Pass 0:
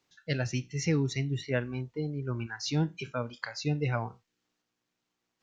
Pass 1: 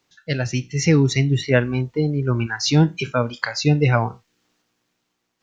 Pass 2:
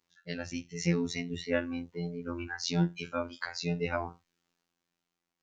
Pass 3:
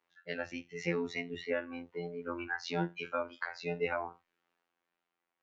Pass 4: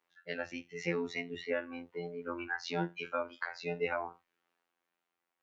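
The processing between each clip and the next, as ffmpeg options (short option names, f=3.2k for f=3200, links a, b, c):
-af "dynaudnorm=f=220:g=7:m=6dB,volume=7dB"
-af "afftfilt=real='hypot(re,im)*cos(PI*b)':imag='0':win_size=2048:overlap=0.75,volume=-9dB"
-filter_complex "[0:a]acrossover=split=360 2900:gain=0.178 1 0.112[a][b][c];[a][b][c]amix=inputs=3:normalize=0,alimiter=limit=-24dB:level=0:latency=1:release=314,volume=3.5dB"
-af "lowshelf=f=130:g=-5"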